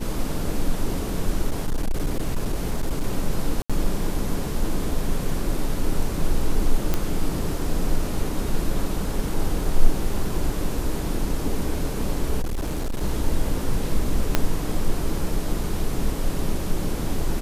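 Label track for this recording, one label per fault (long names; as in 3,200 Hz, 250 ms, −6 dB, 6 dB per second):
1.500000	3.030000	clipping −18 dBFS
3.620000	3.700000	drop-out 76 ms
6.940000	6.940000	click −8 dBFS
12.420000	13.030000	clipping −22 dBFS
14.350000	14.350000	click −3 dBFS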